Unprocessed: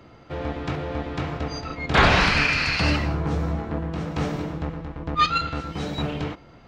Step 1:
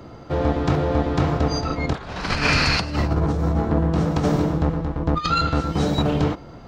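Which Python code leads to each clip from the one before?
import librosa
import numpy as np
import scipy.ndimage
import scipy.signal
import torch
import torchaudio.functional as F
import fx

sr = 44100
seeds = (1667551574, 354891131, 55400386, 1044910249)

y = fx.peak_eq(x, sr, hz=2400.0, db=-8.5, octaves=1.3)
y = fx.over_compress(y, sr, threshold_db=-26.0, ratio=-0.5)
y = y * librosa.db_to_amplitude(7.0)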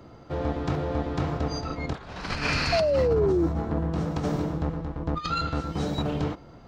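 y = fx.spec_paint(x, sr, seeds[0], shape='fall', start_s=2.72, length_s=0.75, low_hz=320.0, high_hz=700.0, level_db=-15.0)
y = y * librosa.db_to_amplitude(-7.5)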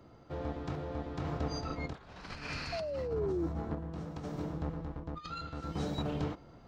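y = fx.rider(x, sr, range_db=3, speed_s=0.5)
y = fx.tremolo_random(y, sr, seeds[1], hz=1.6, depth_pct=55)
y = y * librosa.db_to_amplitude(-8.0)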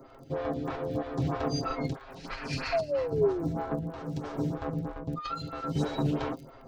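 y = x + 0.73 * np.pad(x, (int(7.5 * sr / 1000.0), 0))[:len(x)]
y = fx.dmg_crackle(y, sr, seeds[2], per_s=25.0, level_db=-47.0)
y = fx.stagger_phaser(y, sr, hz=3.1)
y = y * librosa.db_to_amplitude(7.5)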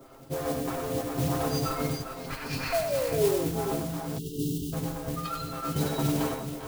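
y = fx.echo_multitap(x, sr, ms=(96, 206, 398, 421), db=(-5.5, -17.5, -10.5, -11.5))
y = fx.mod_noise(y, sr, seeds[3], snr_db=12)
y = fx.spec_erase(y, sr, start_s=4.19, length_s=0.54, low_hz=470.0, high_hz=2700.0)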